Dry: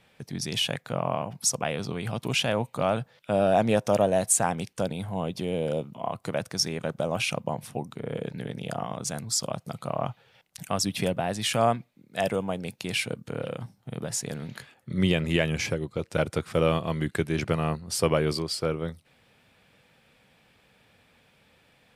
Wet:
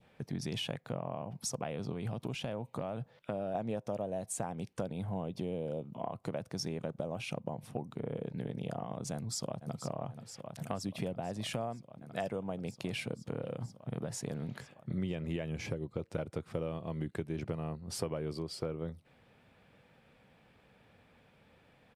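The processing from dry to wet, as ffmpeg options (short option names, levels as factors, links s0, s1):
-filter_complex "[0:a]asettb=1/sr,asplit=3[s0][s1][s2];[s0]atrim=end=1.934[s3];[s1]atrim=start=1.93:end=3.55,asetpts=PTS-STARTPTS,afade=t=in:d=0.004:c=qsin,afade=t=out:st=1.616:d=0.004:c=qsin,acompressor=threshold=0.0316:ratio=2:attack=3.2:release=140:knee=1:detection=peak[s4];[s2]atrim=start=3.546[s5];[s3][s4]acrossfade=d=0.004:c1=hsin:c2=qsin[s6];[s6][s5]acrossfade=d=0.004:c1=qsin:c2=hsin,asplit=2[s7][s8];[s8]afade=t=in:st=9.13:d=0.01,afade=t=out:st=9.8:d=0.01,aecho=0:1:480|960|1440|1920|2400|2880|3360|3840|4320|4800|5280|5760:0.266073|0.226162|0.192237|0.163402|0.138892|0.118058|0.100349|0.0852967|0.0725022|0.0616269|0.0523829|0.0445254[s9];[s7][s9]amix=inputs=2:normalize=0,highshelf=f=2400:g=-12,acompressor=threshold=0.0224:ratio=6,adynamicequalizer=threshold=0.00158:dfrequency=1500:dqfactor=1.1:tfrequency=1500:tqfactor=1.1:attack=5:release=100:ratio=0.375:range=3:mode=cutabove:tftype=bell"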